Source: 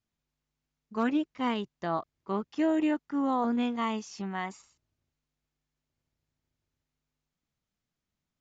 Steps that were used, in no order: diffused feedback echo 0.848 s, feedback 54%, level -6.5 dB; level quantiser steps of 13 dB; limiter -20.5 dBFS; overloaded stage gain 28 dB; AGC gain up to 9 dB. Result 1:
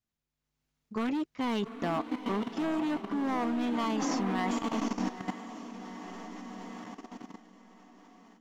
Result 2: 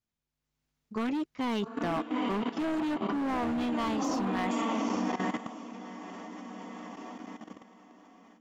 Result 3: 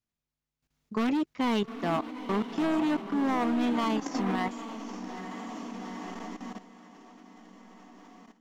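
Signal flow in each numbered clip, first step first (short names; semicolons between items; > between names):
limiter > overloaded stage > diffused feedback echo > level quantiser > AGC; limiter > diffused feedback echo > overloaded stage > level quantiser > AGC; overloaded stage > diffused feedback echo > AGC > level quantiser > limiter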